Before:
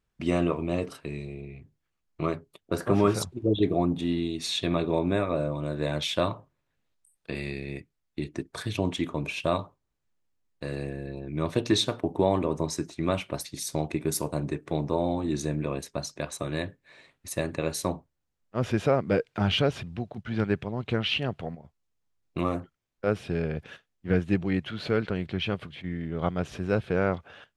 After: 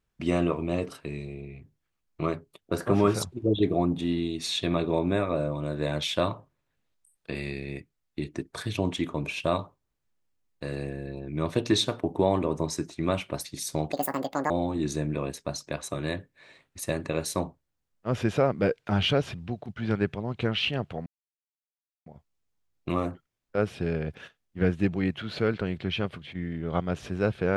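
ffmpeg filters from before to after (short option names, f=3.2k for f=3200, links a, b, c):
-filter_complex "[0:a]asplit=4[a][b][c][d];[a]atrim=end=13.924[e];[b]atrim=start=13.92:end=14.99,asetpts=PTS-STARTPTS,asetrate=81144,aresample=44100,atrim=end_sample=25645,asetpts=PTS-STARTPTS[f];[c]atrim=start=14.986:end=21.55,asetpts=PTS-STARTPTS,afade=t=out:st=6.56:d=0.004:c=hsin,apad=pad_dur=1[g];[d]atrim=start=21.55,asetpts=PTS-STARTPTS,afade=t=in:d=0.004:c=hsin[h];[e][f]acrossfade=d=0.004:c1=hsin:c2=hsin[i];[g][h]concat=n=2:v=0:a=1[j];[i][j]acrossfade=d=0.004:c1=hsin:c2=hsin"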